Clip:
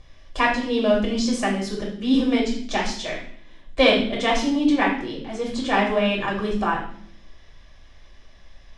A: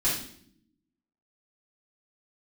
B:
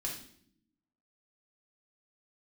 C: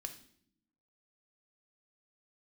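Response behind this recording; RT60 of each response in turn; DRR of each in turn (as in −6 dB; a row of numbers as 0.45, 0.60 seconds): B; non-exponential decay, non-exponential decay, non-exponential decay; −10.5, −3.0, 5.5 decibels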